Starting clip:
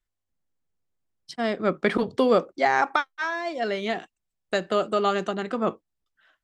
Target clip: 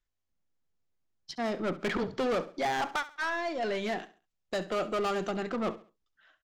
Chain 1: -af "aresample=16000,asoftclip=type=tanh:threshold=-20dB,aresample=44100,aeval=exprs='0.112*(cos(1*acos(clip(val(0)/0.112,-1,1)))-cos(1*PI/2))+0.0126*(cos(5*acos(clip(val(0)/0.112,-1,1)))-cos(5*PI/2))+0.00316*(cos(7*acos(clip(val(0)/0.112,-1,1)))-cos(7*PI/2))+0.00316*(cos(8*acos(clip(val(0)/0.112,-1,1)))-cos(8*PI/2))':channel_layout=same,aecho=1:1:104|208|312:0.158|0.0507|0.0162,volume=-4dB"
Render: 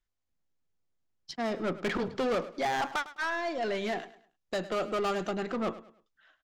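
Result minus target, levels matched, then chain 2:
echo 36 ms late
-af "aresample=16000,asoftclip=type=tanh:threshold=-20dB,aresample=44100,aeval=exprs='0.112*(cos(1*acos(clip(val(0)/0.112,-1,1)))-cos(1*PI/2))+0.0126*(cos(5*acos(clip(val(0)/0.112,-1,1)))-cos(5*PI/2))+0.00316*(cos(7*acos(clip(val(0)/0.112,-1,1)))-cos(7*PI/2))+0.00316*(cos(8*acos(clip(val(0)/0.112,-1,1)))-cos(8*PI/2))':channel_layout=same,aecho=1:1:68|136|204:0.158|0.0507|0.0162,volume=-4dB"

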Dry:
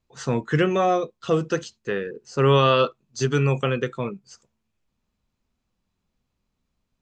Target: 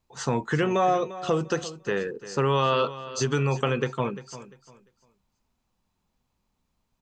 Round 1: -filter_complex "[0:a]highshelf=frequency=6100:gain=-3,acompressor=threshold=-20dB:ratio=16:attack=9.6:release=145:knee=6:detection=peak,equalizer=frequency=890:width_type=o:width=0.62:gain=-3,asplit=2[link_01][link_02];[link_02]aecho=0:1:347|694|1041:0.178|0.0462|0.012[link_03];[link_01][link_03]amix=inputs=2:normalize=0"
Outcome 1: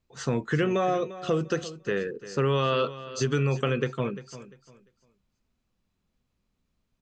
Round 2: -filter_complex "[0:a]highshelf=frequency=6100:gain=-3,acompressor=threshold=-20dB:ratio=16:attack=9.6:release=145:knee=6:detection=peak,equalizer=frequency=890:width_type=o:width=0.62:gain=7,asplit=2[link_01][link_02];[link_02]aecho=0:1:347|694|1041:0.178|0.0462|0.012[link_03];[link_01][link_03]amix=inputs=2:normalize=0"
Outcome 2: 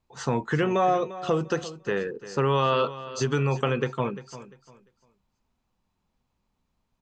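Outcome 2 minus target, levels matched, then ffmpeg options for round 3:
8,000 Hz band −4.0 dB
-filter_complex "[0:a]highshelf=frequency=6100:gain=5,acompressor=threshold=-20dB:ratio=16:attack=9.6:release=145:knee=6:detection=peak,equalizer=frequency=890:width_type=o:width=0.62:gain=7,asplit=2[link_01][link_02];[link_02]aecho=0:1:347|694|1041:0.178|0.0462|0.012[link_03];[link_01][link_03]amix=inputs=2:normalize=0"

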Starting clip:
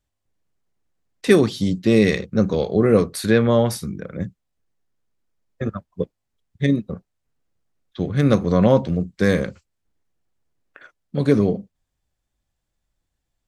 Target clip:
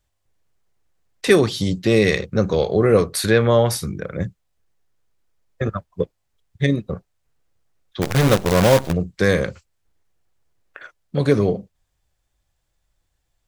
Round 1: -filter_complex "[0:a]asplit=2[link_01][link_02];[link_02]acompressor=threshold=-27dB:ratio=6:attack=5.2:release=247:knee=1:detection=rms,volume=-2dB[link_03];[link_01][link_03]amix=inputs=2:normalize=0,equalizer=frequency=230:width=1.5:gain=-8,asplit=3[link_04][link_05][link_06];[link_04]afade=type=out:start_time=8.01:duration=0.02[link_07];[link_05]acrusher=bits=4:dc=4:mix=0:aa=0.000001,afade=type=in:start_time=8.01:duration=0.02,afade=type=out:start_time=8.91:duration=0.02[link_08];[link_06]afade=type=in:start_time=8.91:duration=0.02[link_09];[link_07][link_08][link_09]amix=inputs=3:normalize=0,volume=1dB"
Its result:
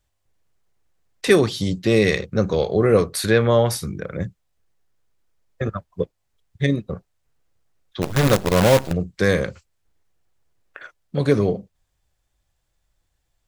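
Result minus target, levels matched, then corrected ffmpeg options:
downward compressor: peak gain reduction +6.5 dB
-filter_complex "[0:a]asplit=2[link_01][link_02];[link_02]acompressor=threshold=-19.5dB:ratio=6:attack=5.2:release=247:knee=1:detection=rms,volume=-2dB[link_03];[link_01][link_03]amix=inputs=2:normalize=0,equalizer=frequency=230:width=1.5:gain=-8,asplit=3[link_04][link_05][link_06];[link_04]afade=type=out:start_time=8.01:duration=0.02[link_07];[link_05]acrusher=bits=4:dc=4:mix=0:aa=0.000001,afade=type=in:start_time=8.01:duration=0.02,afade=type=out:start_time=8.91:duration=0.02[link_08];[link_06]afade=type=in:start_time=8.91:duration=0.02[link_09];[link_07][link_08][link_09]amix=inputs=3:normalize=0,volume=1dB"

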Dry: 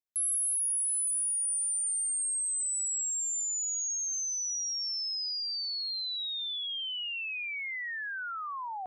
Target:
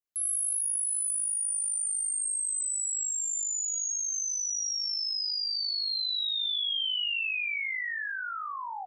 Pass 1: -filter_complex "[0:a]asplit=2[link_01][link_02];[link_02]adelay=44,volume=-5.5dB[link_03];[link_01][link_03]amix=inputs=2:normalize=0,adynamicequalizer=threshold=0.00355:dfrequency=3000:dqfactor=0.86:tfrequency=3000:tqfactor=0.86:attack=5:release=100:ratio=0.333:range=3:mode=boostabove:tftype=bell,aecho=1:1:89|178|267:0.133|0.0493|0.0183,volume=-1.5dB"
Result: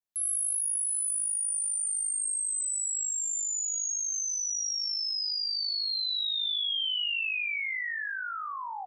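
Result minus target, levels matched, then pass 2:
echo 26 ms late
-filter_complex "[0:a]asplit=2[link_01][link_02];[link_02]adelay=44,volume=-5.5dB[link_03];[link_01][link_03]amix=inputs=2:normalize=0,adynamicequalizer=threshold=0.00355:dfrequency=3000:dqfactor=0.86:tfrequency=3000:tqfactor=0.86:attack=5:release=100:ratio=0.333:range=3:mode=boostabove:tftype=bell,aecho=1:1:63|126|189:0.133|0.0493|0.0183,volume=-1.5dB"

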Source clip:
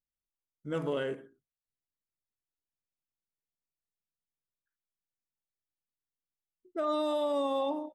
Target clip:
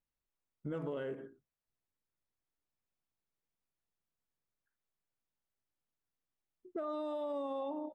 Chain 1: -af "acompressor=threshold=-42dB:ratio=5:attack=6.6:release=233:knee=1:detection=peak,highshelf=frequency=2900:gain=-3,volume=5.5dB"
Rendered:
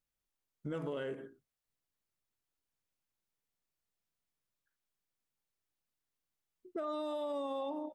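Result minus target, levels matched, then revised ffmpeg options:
4,000 Hz band +6.0 dB
-af "acompressor=threshold=-42dB:ratio=5:attack=6.6:release=233:knee=1:detection=peak,highshelf=frequency=2900:gain=-14,volume=5.5dB"

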